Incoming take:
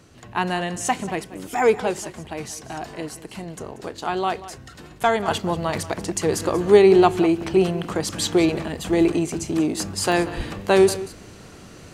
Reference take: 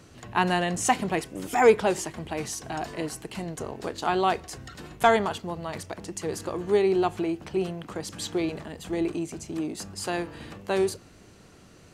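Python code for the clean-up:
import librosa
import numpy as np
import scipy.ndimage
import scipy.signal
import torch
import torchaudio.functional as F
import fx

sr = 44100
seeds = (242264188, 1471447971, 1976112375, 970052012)

y = fx.fix_deplosive(x, sr, at_s=(10.36,))
y = fx.fix_interpolate(y, sr, at_s=(1.34, 10.12), length_ms=1.6)
y = fx.fix_echo_inverse(y, sr, delay_ms=186, level_db=-16.0)
y = fx.fix_level(y, sr, at_s=5.28, step_db=-9.5)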